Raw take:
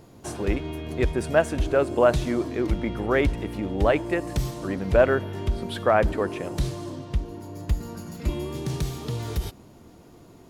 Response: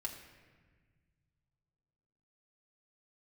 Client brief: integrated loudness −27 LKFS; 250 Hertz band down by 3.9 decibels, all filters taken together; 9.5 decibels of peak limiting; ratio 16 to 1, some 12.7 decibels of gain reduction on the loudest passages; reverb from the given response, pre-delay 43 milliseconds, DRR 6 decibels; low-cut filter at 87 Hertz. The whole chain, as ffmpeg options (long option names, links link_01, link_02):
-filter_complex "[0:a]highpass=87,equalizer=frequency=250:width_type=o:gain=-5.5,acompressor=threshold=-26dB:ratio=16,alimiter=limit=-23dB:level=0:latency=1,asplit=2[link_01][link_02];[1:a]atrim=start_sample=2205,adelay=43[link_03];[link_02][link_03]afir=irnorm=-1:irlink=0,volume=-5dB[link_04];[link_01][link_04]amix=inputs=2:normalize=0,volume=7dB"